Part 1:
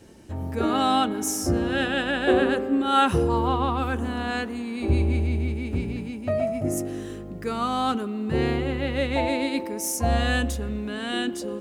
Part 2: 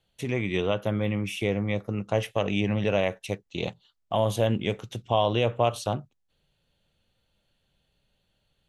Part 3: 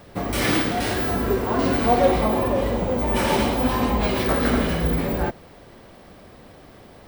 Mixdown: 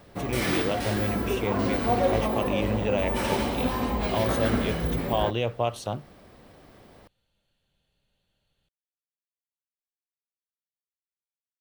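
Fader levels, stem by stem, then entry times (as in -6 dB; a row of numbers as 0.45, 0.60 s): off, -3.0 dB, -6.0 dB; off, 0.00 s, 0.00 s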